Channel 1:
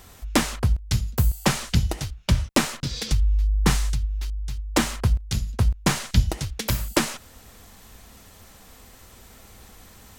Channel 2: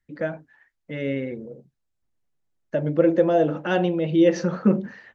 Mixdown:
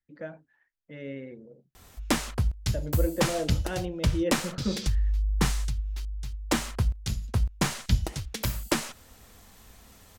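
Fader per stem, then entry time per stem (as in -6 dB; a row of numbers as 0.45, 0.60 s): -5.0, -11.5 dB; 1.75, 0.00 s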